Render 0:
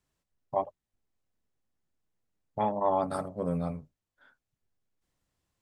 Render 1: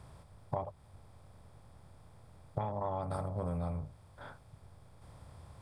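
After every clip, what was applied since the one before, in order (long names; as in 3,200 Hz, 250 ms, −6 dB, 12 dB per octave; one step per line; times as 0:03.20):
compressor on every frequency bin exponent 0.6
low shelf with overshoot 150 Hz +12 dB, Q 1.5
downward compressor 12 to 1, threshold −33 dBFS, peak gain reduction 13.5 dB
level +1 dB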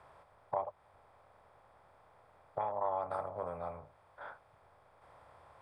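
three-way crossover with the lows and the highs turned down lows −21 dB, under 460 Hz, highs −17 dB, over 2,500 Hz
level +4 dB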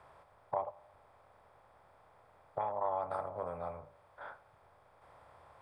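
tape delay 84 ms, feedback 60%, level −20 dB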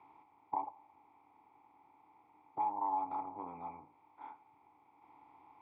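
formant filter u
level +11.5 dB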